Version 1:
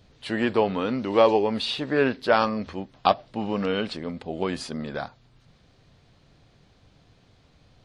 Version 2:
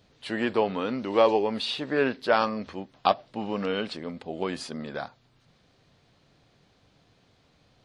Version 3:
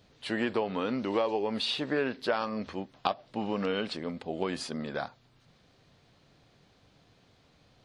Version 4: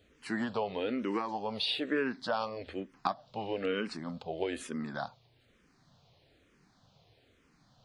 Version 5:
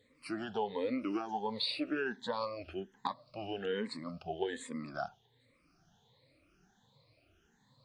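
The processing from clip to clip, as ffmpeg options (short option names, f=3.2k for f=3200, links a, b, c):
-af "lowshelf=f=98:g=-11,volume=-2dB"
-af "acompressor=threshold=-25dB:ratio=6"
-filter_complex "[0:a]asplit=2[a][b];[b]afreqshift=-1.1[c];[a][c]amix=inputs=2:normalize=1"
-af "afftfilt=real='re*pow(10,18/40*sin(2*PI*(1*log(max(b,1)*sr/1024/100)/log(2)-(1.3)*(pts-256)/sr)))':imag='im*pow(10,18/40*sin(2*PI*(1*log(max(b,1)*sr/1024/100)/log(2)-(1.3)*(pts-256)/sr)))':win_size=1024:overlap=0.75,volume=-6.5dB"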